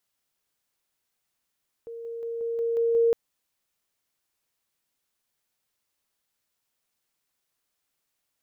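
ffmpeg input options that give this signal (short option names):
-f lavfi -i "aevalsrc='pow(10,(-35.5+3*floor(t/0.18))/20)*sin(2*PI*463*t)':d=1.26:s=44100"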